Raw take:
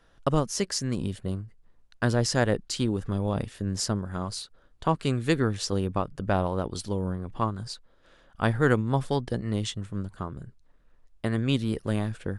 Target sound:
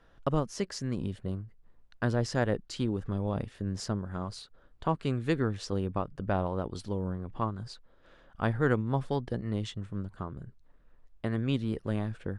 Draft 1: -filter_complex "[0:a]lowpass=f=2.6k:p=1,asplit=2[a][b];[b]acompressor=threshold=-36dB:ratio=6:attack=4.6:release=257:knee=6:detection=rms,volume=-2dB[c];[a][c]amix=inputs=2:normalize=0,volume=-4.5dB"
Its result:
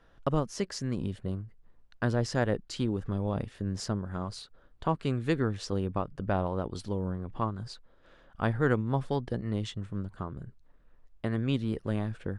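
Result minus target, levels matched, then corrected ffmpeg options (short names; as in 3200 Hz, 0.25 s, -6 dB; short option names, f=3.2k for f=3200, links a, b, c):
compressor: peak gain reduction -5.5 dB
-filter_complex "[0:a]lowpass=f=2.6k:p=1,asplit=2[a][b];[b]acompressor=threshold=-42.5dB:ratio=6:attack=4.6:release=257:knee=6:detection=rms,volume=-2dB[c];[a][c]amix=inputs=2:normalize=0,volume=-4.5dB"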